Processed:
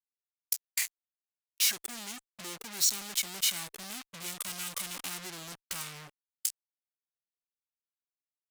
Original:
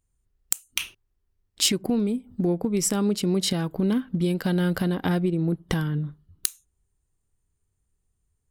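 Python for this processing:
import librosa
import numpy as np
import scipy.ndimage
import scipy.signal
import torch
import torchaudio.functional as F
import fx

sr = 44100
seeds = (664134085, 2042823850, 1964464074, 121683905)

y = fx.fuzz(x, sr, gain_db=41.0, gate_db=-36.0)
y = F.preemphasis(torch.from_numpy(y), 0.97).numpy()
y = fx.formant_shift(y, sr, semitones=-5)
y = y * librosa.db_to_amplitude(-8.5)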